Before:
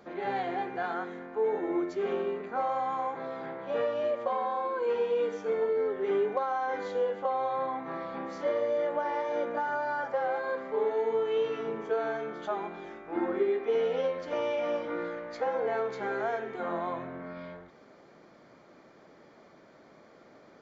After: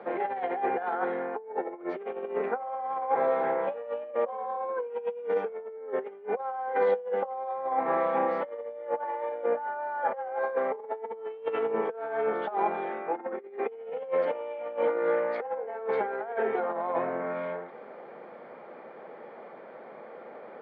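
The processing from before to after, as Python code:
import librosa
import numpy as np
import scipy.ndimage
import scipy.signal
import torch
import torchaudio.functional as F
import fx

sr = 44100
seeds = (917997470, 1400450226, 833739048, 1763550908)

y = fx.over_compress(x, sr, threshold_db=-36.0, ratio=-0.5)
y = fx.cabinet(y, sr, low_hz=180.0, low_slope=24, high_hz=2700.0, hz=(180.0, 290.0, 490.0, 820.0), db=(-4, -9, 8, 7))
y = y * 10.0 ** (2.5 / 20.0)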